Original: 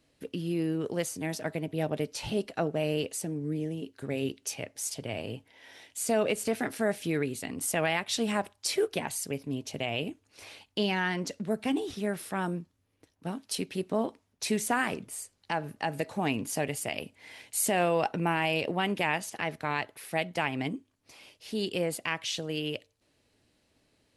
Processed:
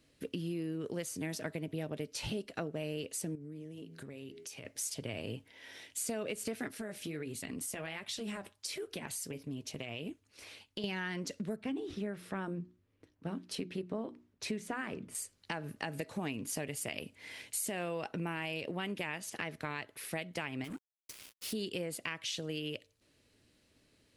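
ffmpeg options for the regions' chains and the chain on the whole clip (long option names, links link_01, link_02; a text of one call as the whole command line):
ffmpeg -i in.wav -filter_complex "[0:a]asettb=1/sr,asplit=3[link_01][link_02][link_03];[link_01]atrim=end=3.354[link_04];[link_02]atrim=start=3.35:end=4.65,asetpts=PTS-STARTPTS,afade=type=in:duration=0.004:curve=qsin,afade=type=out:start_time=1.296:duration=0.004:curve=qsin,bandreject=frequency=81.99:width_type=h:width=4,bandreject=frequency=163.98:width_type=h:width=4,bandreject=frequency=245.97:width_type=h:width=4,bandreject=frequency=327.96:width_type=h:width=4,bandreject=frequency=409.95:width_type=h:width=4,bandreject=frequency=491.94:width_type=h:width=4,bandreject=frequency=573.93:width_type=h:width=4,bandreject=frequency=655.92:width_type=h:width=4,bandreject=frequency=737.91:width_type=h:width=4,bandreject=frequency=819.9:width_type=h:width=4,bandreject=frequency=901.89:width_type=h:width=4,bandreject=frequency=983.88:width_type=h:width=4,bandreject=frequency=1065.87:width_type=h:width=4,bandreject=frequency=1147.86:width_type=h:width=4,bandreject=frequency=1229.85:width_type=h:width=4,bandreject=frequency=1311.84:width_type=h:width=4,bandreject=frequency=1393.83:width_type=h:width=4,bandreject=frequency=1475.82:width_type=h:width=4,bandreject=frequency=1557.81:width_type=h:width=4,bandreject=frequency=1639.8:width_type=h:width=4,bandreject=frequency=1721.79:width_type=h:width=4,bandreject=frequency=1803.78:width_type=h:width=4,bandreject=frequency=1885.77:width_type=h:width=4,bandreject=frequency=1967.76:width_type=h:width=4,bandreject=frequency=2049.75:width_type=h:width=4,bandreject=frequency=2131.74:width_type=h:width=4,bandreject=frequency=2213.73:width_type=h:width=4,bandreject=frequency=2295.72:width_type=h:width=4,bandreject=frequency=2377.71:width_type=h:width=4,acompressor=threshold=-44dB:ratio=6:attack=3.2:release=140:knee=1:detection=peak[link_05];[link_03]atrim=start=4.646[link_06];[link_04][link_05]acrossfade=duration=0.004:curve1=hsin:curve2=qsin[link_07];[link_07][link_06]acrossfade=duration=0.004:curve1=qsin:curve2=hsin,asettb=1/sr,asplit=3[link_08][link_09][link_10];[link_08]atrim=end=6.684[link_11];[link_09]atrim=start=6.68:end=10.84,asetpts=PTS-STARTPTS,afade=type=in:duration=0.004:curve=qsin,afade=type=out:start_time=4.156:duration=0.004:curve=qsin,acompressor=threshold=-31dB:ratio=6:attack=3.2:release=140:knee=1:detection=peak,flanger=delay=0.9:depth=7.8:regen=-57:speed=1.4:shape=sinusoidal[link_12];[link_10]atrim=start=10.836[link_13];[link_11][link_12]acrossfade=duration=0.004:curve1=hsin:curve2=qsin[link_14];[link_14][link_13]acrossfade=duration=0.004:curve1=qsin:curve2=hsin,asettb=1/sr,asplit=3[link_15][link_16][link_17];[link_15]atrim=end=11.564[link_18];[link_16]atrim=start=11.56:end=15.15,asetpts=PTS-STARTPTS,afade=type=in:duration=0.004:curve=qsin,afade=type=out:start_time=3.586:duration=0.004:curve=qsin,lowpass=frequency=2000:poles=1,bandreject=frequency=60:width_type=h:width=6,bandreject=frequency=120:width_type=h:width=6,bandreject=frequency=180:width_type=h:width=6,bandreject=frequency=240:width_type=h:width=6,bandreject=frequency=300:width_type=h:width=6,bandreject=frequency=360:width_type=h:width=6[link_19];[link_17]atrim=start=15.146[link_20];[link_18][link_19]acrossfade=duration=0.004:curve1=hsin:curve2=qsin[link_21];[link_21][link_20]acrossfade=duration=0.004:curve1=qsin:curve2=hsin,asettb=1/sr,asplit=3[link_22][link_23][link_24];[link_22]atrim=end=20.644[link_25];[link_23]atrim=start=20.64:end=21.53,asetpts=PTS-STARTPTS,afade=type=in:duration=0.004:curve=qsin,afade=type=out:start_time=0.886:duration=0.004:curve=qsin,aemphasis=mode=production:type=50fm,acompressor=threshold=-37dB:ratio=4:attack=3.2:release=140:knee=1:detection=peak,acrusher=bits=6:mix=0:aa=0.5[link_26];[link_24]atrim=start=21.526[link_27];[link_25][link_26]acrossfade=duration=0.004:curve1=hsin:curve2=qsin[link_28];[link_28][link_27]acrossfade=duration=0.004:curve1=qsin:curve2=hsin,equalizer=frequency=790:width=2:gain=-6.5,acompressor=threshold=-36dB:ratio=5,volume=1dB" out.wav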